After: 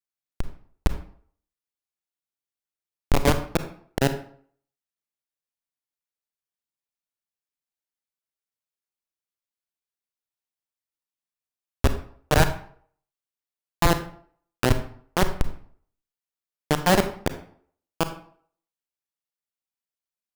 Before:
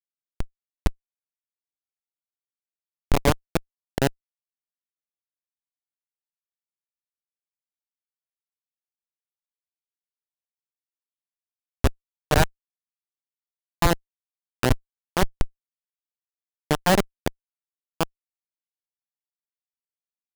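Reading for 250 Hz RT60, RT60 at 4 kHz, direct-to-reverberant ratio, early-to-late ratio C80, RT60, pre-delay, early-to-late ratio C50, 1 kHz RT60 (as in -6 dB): 0.55 s, 0.40 s, 9.0 dB, 14.0 dB, 0.55 s, 31 ms, 11.0 dB, 0.55 s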